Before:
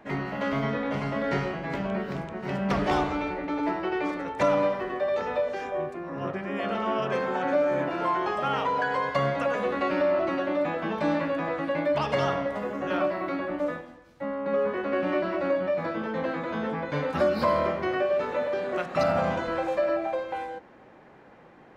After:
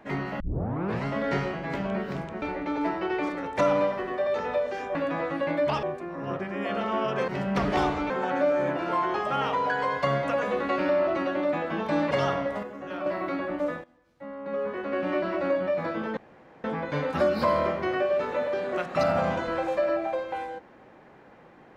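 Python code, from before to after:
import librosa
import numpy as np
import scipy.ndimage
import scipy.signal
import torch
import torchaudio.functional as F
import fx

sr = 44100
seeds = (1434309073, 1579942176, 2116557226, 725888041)

y = fx.edit(x, sr, fx.tape_start(start_s=0.4, length_s=0.66),
    fx.move(start_s=2.42, length_s=0.82, to_s=7.22),
    fx.move(start_s=11.23, length_s=0.88, to_s=5.77),
    fx.clip_gain(start_s=12.63, length_s=0.43, db=-7.5),
    fx.fade_in_from(start_s=13.84, length_s=1.49, floor_db=-15.5),
    fx.room_tone_fill(start_s=16.17, length_s=0.47), tone=tone)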